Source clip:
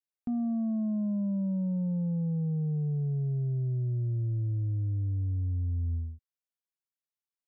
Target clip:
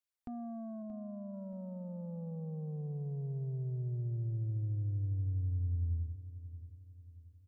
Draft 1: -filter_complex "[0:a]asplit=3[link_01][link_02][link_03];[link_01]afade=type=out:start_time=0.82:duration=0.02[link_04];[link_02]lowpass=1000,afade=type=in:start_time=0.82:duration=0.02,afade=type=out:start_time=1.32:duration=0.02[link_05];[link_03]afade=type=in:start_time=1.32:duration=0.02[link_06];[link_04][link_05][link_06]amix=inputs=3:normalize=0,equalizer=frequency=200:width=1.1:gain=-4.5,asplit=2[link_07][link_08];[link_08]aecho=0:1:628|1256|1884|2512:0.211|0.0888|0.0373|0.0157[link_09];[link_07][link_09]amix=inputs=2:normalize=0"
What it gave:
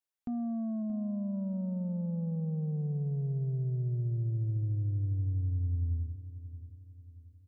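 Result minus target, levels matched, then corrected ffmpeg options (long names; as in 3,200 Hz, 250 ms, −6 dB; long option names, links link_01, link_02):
250 Hz band +3.5 dB
-filter_complex "[0:a]asplit=3[link_01][link_02][link_03];[link_01]afade=type=out:start_time=0.82:duration=0.02[link_04];[link_02]lowpass=1000,afade=type=in:start_time=0.82:duration=0.02,afade=type=out:start_time=1.32:duration=0.02[link_05];[link_03]afade=type=in:start_time=1.32:duration=0.02[link_06];[link_04][link_05][link_06]amix=inputs=3:normalize=0,equalizer=frequency=200:width=1.1:gain=-15,asplit=2[link_07][link_08];[link_08]aecho=0:1:628|1256|1884|2512:0.211|0.0888|0.0373|0.0157[link_09];[link_07][link_09]amix=inputs=2:normalize=0"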